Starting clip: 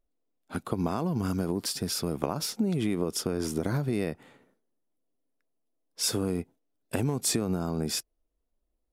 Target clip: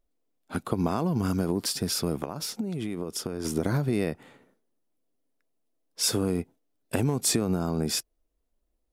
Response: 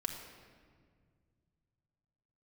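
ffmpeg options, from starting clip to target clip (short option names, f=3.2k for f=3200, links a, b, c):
-filter_complex "[0:a]asplit=3[a][b][c];[a]afade=t=out:st=2.2:d=0.02[d];[b]acompressor=threshold=-31dB:ratio=6,afade=t=in:st=2.2:d=0.02,afade=t=out:st=3.44:d=0.02[e];[c]afade=t=in:st=3.44:d=0.02[f];[d][e][f]amix=inputs=3:normalize=0,volume=2.5dB"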